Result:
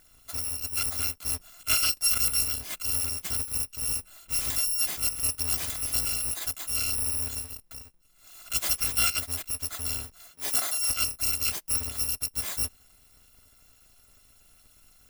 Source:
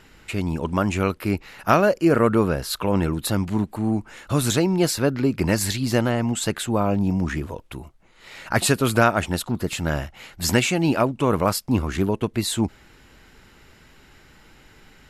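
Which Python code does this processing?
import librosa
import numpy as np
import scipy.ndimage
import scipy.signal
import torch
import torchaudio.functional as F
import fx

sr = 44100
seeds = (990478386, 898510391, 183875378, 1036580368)

y = fx.bit_reversed(x, sr, seeds[0], block=256)
y = fx.highpass(y, sr, hz=fx.line((10.3, 130.0), (10.87, 310.0)), slope=12, at=(10.3, 10.87), fade=0.02)
y = F.gain(torch.from_numpy(y), -7.5).numpy()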